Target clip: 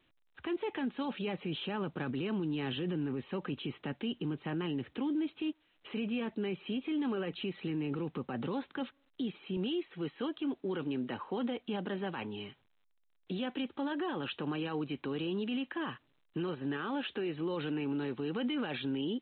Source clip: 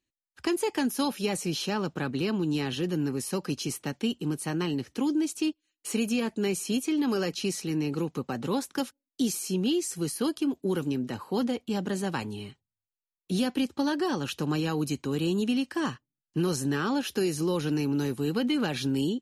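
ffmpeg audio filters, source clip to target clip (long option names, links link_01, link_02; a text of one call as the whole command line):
ffmpeg -i in.wav -af "asetnsamples=nb_out_samples=441:pad=0,asendcmd='9.57 highpass f 320',highpass=frequency=73:poles=1,alimiter=level_in=3.5dB:limit=-24dB:level=0:latency=1:release=36,volume=-3.5dB" -ar 8000 -c:a pcm_alaw out.wav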